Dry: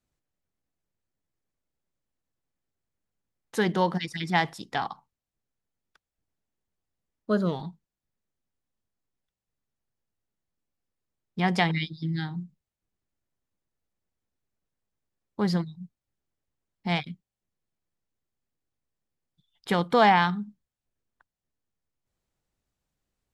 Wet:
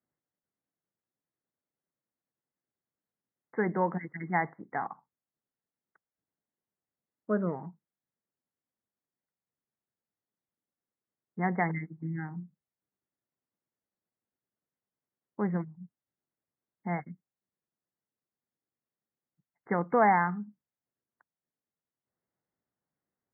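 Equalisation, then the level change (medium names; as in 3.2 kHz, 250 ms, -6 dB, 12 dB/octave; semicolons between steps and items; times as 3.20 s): high-pass 160 Hz 12 dB/octave; brick-wall FIR low-pass 2.2 kHz; distance through air 210 m; -3.0 dB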